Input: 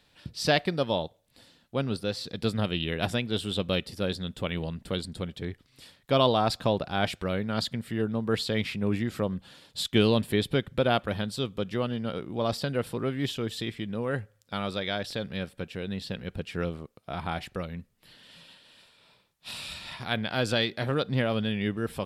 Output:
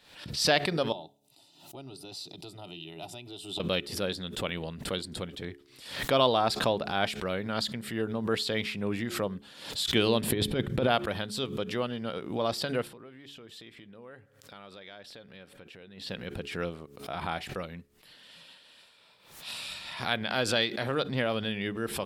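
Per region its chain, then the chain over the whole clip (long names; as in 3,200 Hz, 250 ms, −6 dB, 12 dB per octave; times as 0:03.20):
0:00.92–0:03.60: notch comb filter 1,100 Hz + downward compressor 3 to 1, threshold −34 dBFS + phaser with its sweep stopped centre 330 Hz, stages 8
0:10.23–0:10.88: low-shelf EQ 500 Hz +9.5 dB + compressor whose output falls as the input rises −21 dBFS, ratio −0.5
0:12.87–0:16.09: bass and treble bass −2 dB, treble −5 dB + downward compressor 4 to 1, threshold −45 dBFS
whole clip: low-shelf EQ 210 Hz −9.5 dB; hum removal 70.66 Hz, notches 6; background raised ahead of every attack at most 85 dB per second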